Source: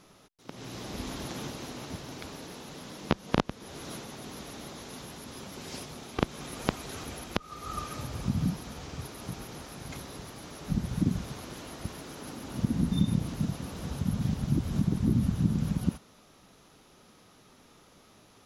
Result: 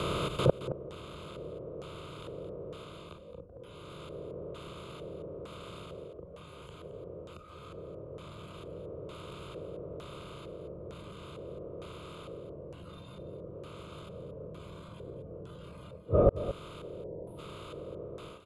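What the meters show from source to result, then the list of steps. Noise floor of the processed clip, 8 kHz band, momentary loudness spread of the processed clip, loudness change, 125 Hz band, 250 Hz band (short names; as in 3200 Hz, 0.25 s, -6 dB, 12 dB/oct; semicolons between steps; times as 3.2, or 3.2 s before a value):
-50 dBFS, -14.5 dB, 15 LU, -5.5 dB, -8.0 dB, -11.0 dB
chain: per-bin compression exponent 0.2; frequency shift +16 Hz; spectral gain 16.84–17.39, 1000–8500 Hz -13 dB; notches 60/120/180/240/300 Hz; dynamic EQ 360 Hz, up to +3 dB, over -36 dBFS, Q 0.89; AGC gain up to 16 dB; soft clip -10.5 dBFS, distortion -14 dB; spectral noise reduction 13 dB; fixed phaser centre 1200 Hz, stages 8; LFO low-pass square 1.1 Hz 520–7100 Hz; flipped gate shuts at -20 dBFS, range -35 dB; on a send: echo 0.221 s -12.5 dB; on the sum: gain +10 dB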